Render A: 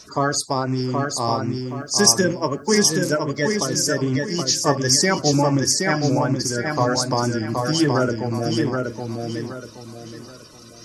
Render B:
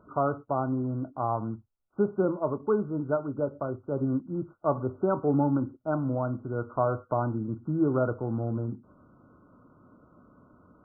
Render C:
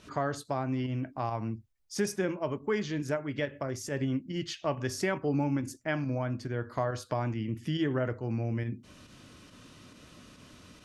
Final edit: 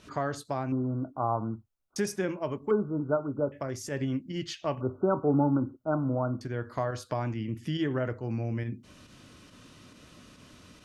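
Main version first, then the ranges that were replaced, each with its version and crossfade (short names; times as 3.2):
C
0.72–1.96 from B
2.71–3.52 from B
4.81–6.41 from B
not used: A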